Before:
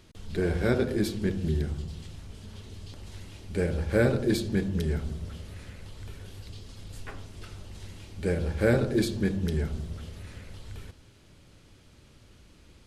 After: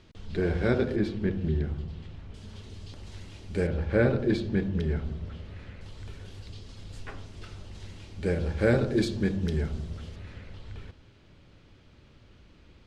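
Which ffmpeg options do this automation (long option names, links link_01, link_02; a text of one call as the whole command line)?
ffmpeg -i in.wav -af "asetnsamples=nb_out_samples=441:pad=0,asendcmd='0.96 lowpass f 2800;2.34 lowpass f 7300;3.67 lowpass f 3300;5.81 lowpass f 6700;10.16 lowpass f 3900',lowpass=4800" out.wav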